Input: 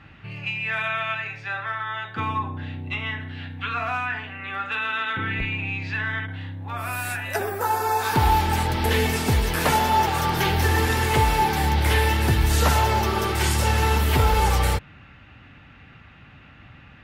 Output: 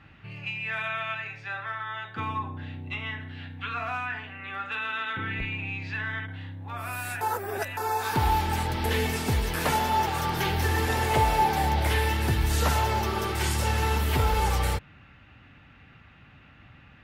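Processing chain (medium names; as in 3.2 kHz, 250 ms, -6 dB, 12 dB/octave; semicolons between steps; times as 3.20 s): 10.88–11.88 s: peaking EQ 660 Hz +9 dB 0.65 oct; short-mantissa float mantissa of 8-bit; 7.21–7.77 s: reverse; trim -5 dB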